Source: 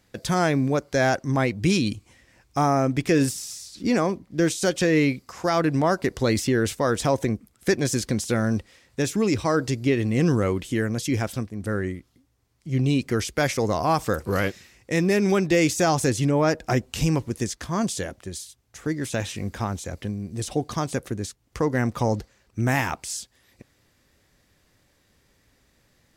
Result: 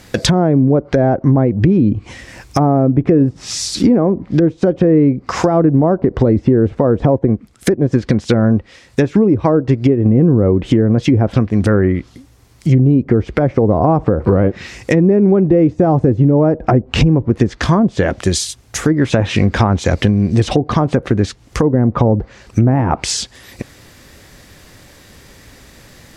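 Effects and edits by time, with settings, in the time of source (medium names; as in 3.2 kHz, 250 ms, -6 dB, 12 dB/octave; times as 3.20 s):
7.18–10.06 s: upward expansion, over -34 dBFS
whole clip: low-pass that closes with the level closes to 570 Hz, closed at -20 dBFS; compression, threshold -30 dBFS; loudness maximiser +22.5 dB; trim -1 dB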